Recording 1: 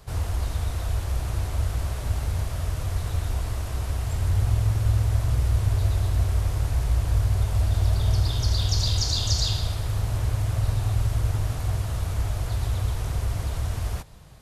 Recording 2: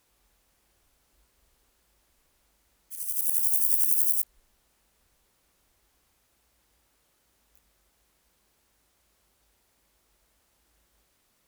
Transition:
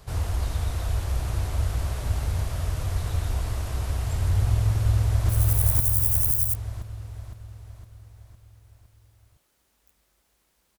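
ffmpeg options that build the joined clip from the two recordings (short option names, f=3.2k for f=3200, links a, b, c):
-filter_complex "[0:a]apad=whole_dur=10.78,atrim=end=10.78,atrim=end=5.292[a];[1:a]atrim=start=2.968:end=8.46[b];[a][b]acrossfade=d=0.004:c1=hsin:c2=hsin,asplit=2[c][d];[d]afade=t=in:st=4.74:d=0.01,afade=t=out:st=5.29:d=0.01,aecho=0:1:510|1020|1530|2040|2550|3060|3570|4080:1|0.55|0.3025|0.166375|0.0915063|0.0503284|0.0276806|0.0152244[e];[c][e]amix=inputs=2:normalize=0"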